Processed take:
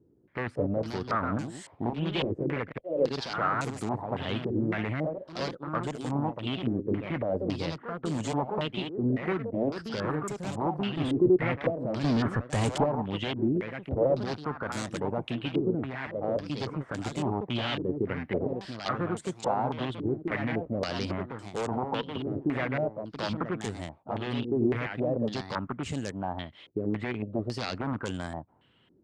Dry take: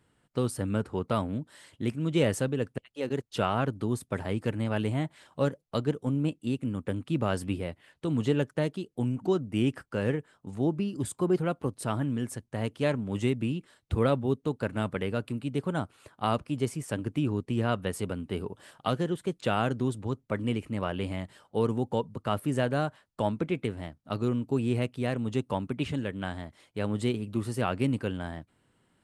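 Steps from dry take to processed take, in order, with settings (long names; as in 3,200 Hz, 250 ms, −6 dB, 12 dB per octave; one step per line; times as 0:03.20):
wavefolder on the positive side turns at −22.5 dBFS
high-pass filter 41 Hz
0:12.04–0:12.84: leveller curve on the samples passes 5
in parallel at −2 dB: downward compressor, threshold −41 dBFS, peak gain reduction 17 dB
on the sum: brickwall limiter −23 dBFS, peak gain reduction 6.5 dB
harmonic generator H 3 −19 dB, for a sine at −23 dBFS
delay with pitch and tempo change per echo 244 ms, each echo +2 semitones, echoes 2, each echo −6 dB
low-pass on a step sequencer 3.6 Hz 370–7,400 Hz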